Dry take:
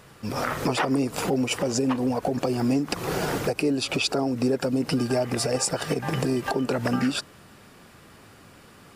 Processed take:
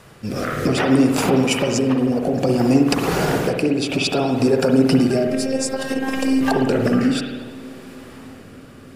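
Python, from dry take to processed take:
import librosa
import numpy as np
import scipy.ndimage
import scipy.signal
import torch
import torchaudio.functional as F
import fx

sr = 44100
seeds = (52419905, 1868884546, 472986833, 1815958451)

p1 = fx.robotise(x, sr, hz=266.0, at=(5.27, 6.41))
p2 = fx.rotary(p1, sr, hz=0.6)
p3 = p2 + fx.echo_wet_lowpass(p2, sr, ms=305, feedback_pct=76, hz=700.0, wet_db=-20.0, dry=0)
p4 = fx.rev_spring(p3, sr, rt60_s=1.2, pass_ms=(53,), chirp_ms=60, drr_db=2.5)
y = p4 * librosa.db_to_amplitude(7.0)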